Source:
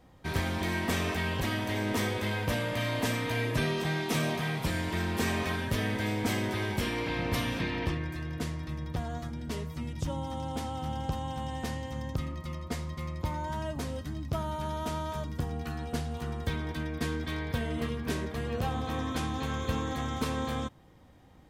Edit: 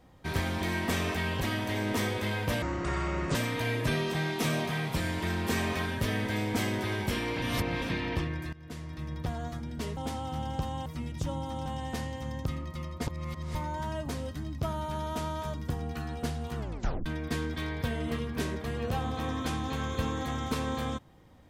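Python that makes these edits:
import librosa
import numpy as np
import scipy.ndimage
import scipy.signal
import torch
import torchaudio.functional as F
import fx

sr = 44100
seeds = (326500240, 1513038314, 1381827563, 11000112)

y = fx.edit(x, sr, fx.speed_span(start_s=2.62, length_s=0.43, speed=0.59),
    fx.reverse_span(start_s=7.12, length_s=0.4),
    fx.fade_in_from(start_s=8.23, length_s=0.6, floor_db=-18.0),
    fx.move(start_s=9.67, length_s=0.8, to_s=11.36),
    fx.reverse_span(start_s=12.77, length_s=0.48),
    fx.tape_stop(start_s=16.28, length_s=0.48), tone=tone)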